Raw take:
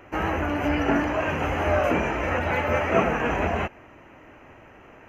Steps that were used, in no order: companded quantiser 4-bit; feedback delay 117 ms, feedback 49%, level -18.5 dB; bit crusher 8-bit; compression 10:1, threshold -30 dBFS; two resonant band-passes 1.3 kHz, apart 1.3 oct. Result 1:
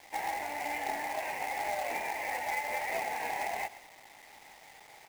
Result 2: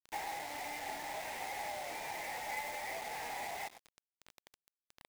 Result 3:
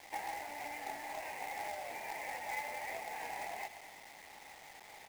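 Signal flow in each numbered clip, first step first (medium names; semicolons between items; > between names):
bit crusher > two resonant band-passes > compression > companded quantiser > feedback delay; compression > two resonant band-passes > bit crusher > feedback delay > companded quantiser; feedback delay > compression > bit crusher > two resonant band-passes > companded quantiser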